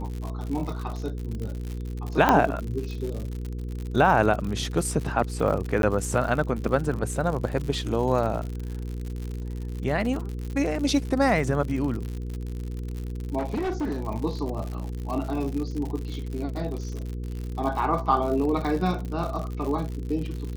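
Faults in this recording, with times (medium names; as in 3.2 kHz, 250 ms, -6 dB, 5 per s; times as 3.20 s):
crackle 90 per s -31 dBFS
hum 60 Hz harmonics 8 -32 dBFS
2.29 s: pop -6 dBFS
5.82–5.83 s: dropout
13.38–14.03 s: clipped -24 dBFS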